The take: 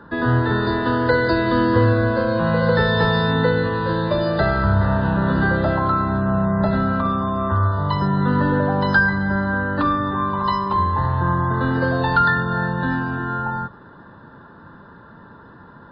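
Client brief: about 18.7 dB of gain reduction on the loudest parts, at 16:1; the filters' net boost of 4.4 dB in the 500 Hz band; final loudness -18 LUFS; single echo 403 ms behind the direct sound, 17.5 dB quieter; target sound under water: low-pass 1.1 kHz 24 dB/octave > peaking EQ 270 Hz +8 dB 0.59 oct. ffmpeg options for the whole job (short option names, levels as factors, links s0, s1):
-af "equalizer=f=500:t=o:g=4,acompressor=threshold=0.0355:ratio=16,lowpass=f=1100:w=0.5412,lowpass=f=1100:w=1.3066,equalizer=f=270:t=o:w=0.59:g=8,aecho=1:1:403:0.133,volume=5.31"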